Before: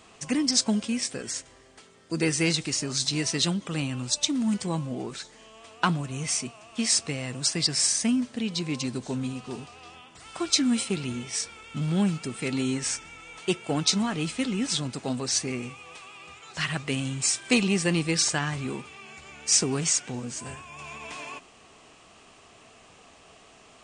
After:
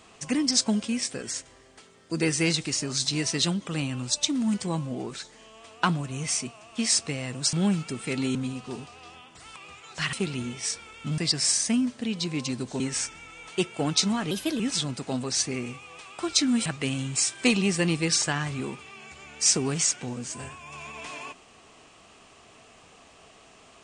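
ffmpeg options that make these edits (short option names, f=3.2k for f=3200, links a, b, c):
-filter_complex "[0:a]asplit=11[a][b][c][d][e][f][g][h][i][j][k];[a]atrim=end=7.532[l];[b]atrim=start=11.878:end=12.702[m];[c]atrim=start=9.148:end=10.362[n];[d]atrim=start=16.148:end=16.722[o];[e]atrim=start=10.828:end=11.882[p];[f]atrim=start=7.528:end=9.152[q];[g]atrim=start=12.698:end=14.214[r];[h]atrim=start=14.21:end=14.56,asetpts=PTS-STARTPTS,asetrate=53802,aresample=44100[s];[i]atrim=start=14.556:end=16.152[t];[j]atrim=start=10.358:end=10.832[u];[k]atrim=start=16.718[v];[l][m]acrossfade=d=0.004:c1=hsin:c2=hsin[w];[w][n]acrossfade=d=0.004:c1=hsin:c2=hsin[x];[x][o]acrossfade=d=0.004:c1=hsin:c2=hsin[y];[y][p]acrossfade=d=0.004:c1=hsin:c2=hsin[z];[z][q]acrossfade=d=0.004:c1=hsin:c2=hsin[aa];[aa][r]acrossfade=d=0.004:c1=hsin:c2=hsin[ab];[ab][s]acrossfade=d=0.004:c1=hsin:c2=hsin[ac];[ac][t]acrossfade=d=0.004:c1=hsin:c2=hsin[ad];[ad][u]acrossfade=d=0.004:c1=hsin:c2=hsin[ae];[ae][v]acrossfade=d=0.004:c1=hsin:c2=hsin"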